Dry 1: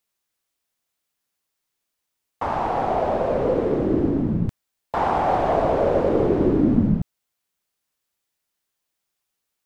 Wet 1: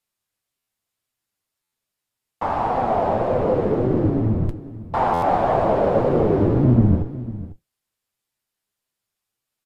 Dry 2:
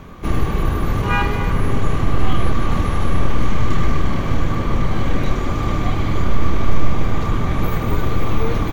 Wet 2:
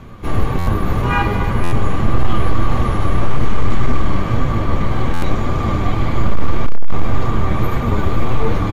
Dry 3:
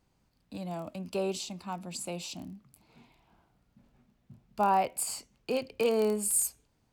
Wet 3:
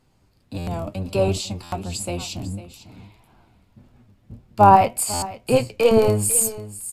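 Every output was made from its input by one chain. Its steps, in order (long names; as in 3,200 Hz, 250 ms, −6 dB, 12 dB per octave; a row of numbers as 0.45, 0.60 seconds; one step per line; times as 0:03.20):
sub-octave generator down 1 octave, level +1 dB
notch filter 6,000 Hz, Q 19
flanger 1.8 Hz, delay 7.6 ms, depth 3 ms, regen +53%
single-tap delay 499 ms −14.5 dB
dynamic equaliser 840 Hz, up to +4 dB, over −36 dBFS, Q 0.71
gain into a clipping stage and back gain 7 dB
buffer that repeats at 0:00.58/0:01.63/0:05.13, samples 512, times 7
MP3 112 kbit/s 32,000 Hz
loudness normalisation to −20 LKFS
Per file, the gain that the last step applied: +2.5, +3.5, +13.5 decibels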